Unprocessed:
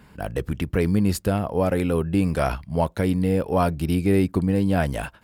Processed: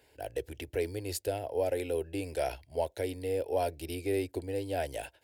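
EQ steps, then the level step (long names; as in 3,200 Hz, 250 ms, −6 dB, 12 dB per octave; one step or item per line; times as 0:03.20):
high-pass filter 100 Hz 12 dB per octave
parametric band 160 Hz −12.5 dB 1.1 octaves
phaser with its sweep stopped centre 490 Hz, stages 4
−5.0 dB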